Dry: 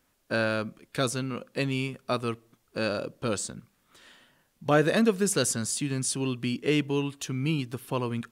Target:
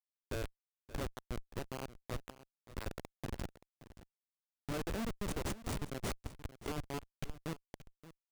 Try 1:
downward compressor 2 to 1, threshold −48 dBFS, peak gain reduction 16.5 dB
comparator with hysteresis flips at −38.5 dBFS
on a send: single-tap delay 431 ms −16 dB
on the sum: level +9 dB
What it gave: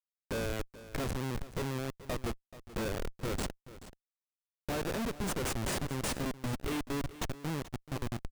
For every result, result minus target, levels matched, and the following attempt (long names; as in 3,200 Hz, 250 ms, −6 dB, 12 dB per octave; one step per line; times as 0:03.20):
echo 145 ms early; downward compressor: peak gain reduction −3.5 dB
downward compressor 2 to 1, threshold −48 dBFS, peak gain reduction 16.5 dB
comparator with hysteresis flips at −38.5 dBFS
on a send: single-tap delay 576 ms −16 dB
on the sum: level +9 dB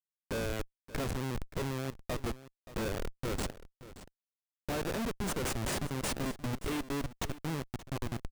downward compressor: peak gain reduction −3.5 dB
downward compressor 2 to 1, threshold −55 dBFS, peak gain reduction 20 dB
comparator with hysteresis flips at −38.5 dBFS
on a send: single-tap delay 576 ms −16 dB
on the sum: level +9 dB